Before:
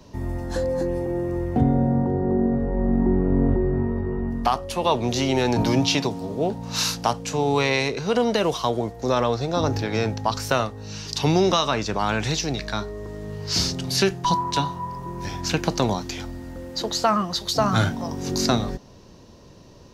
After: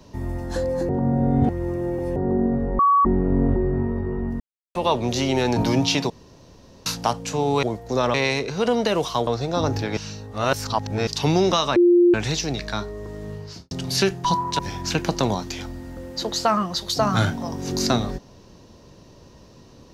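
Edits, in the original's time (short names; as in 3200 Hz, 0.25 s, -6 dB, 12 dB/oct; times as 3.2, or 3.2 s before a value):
0.89–2.16 reverse
2.79–3.05 bleep 1130 Hz -13 dBFS
4.4–4.75 mute
6.1–6.86 room tone
8.76–9.27 move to 7.63
9.97–11.07 reverse
11.76–12.14 bleep 350 Hz -11 dBFS
13.27–13.71 studio fade out
14.59–15.18 cut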